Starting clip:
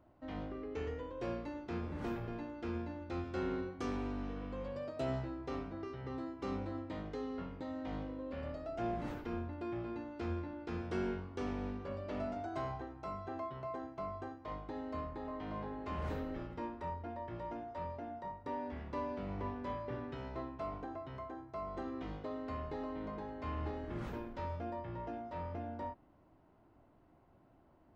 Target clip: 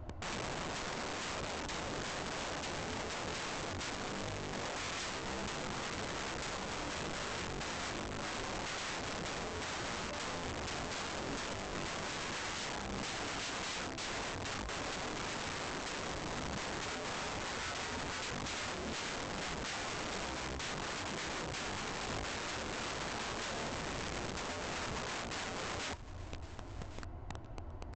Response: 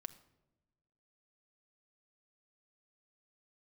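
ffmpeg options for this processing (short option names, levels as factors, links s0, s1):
-af "lowshelf=f=110:t=q:w=1.5:g=13,acompressor=threshold=0.00355:ratio=3,flanger=delay=8:depth=1.3:regen=-42:speed=1.8:shape=sinusoidal,aresample=16000,aeval=exprs='(mod(473*val(0)+1,2)-1)/473':c=same,aresample=44100,aecho=1:1:1112:0.141,volume=7.94"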